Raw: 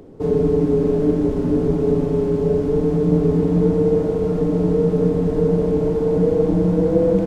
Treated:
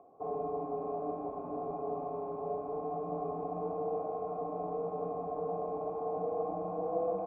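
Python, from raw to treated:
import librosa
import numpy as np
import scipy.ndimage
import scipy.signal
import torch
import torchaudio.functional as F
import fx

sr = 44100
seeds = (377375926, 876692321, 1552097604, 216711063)

y = fx.formant_cascade(x, sr, vowel='a')
y = fx.low_shelf(y, sr, hz=390.0, db=-9.0)
y = fx.notch_comb(y, sr, f0_hz=930.0)
y = y * 10.0 ** (7.5 / 20.0)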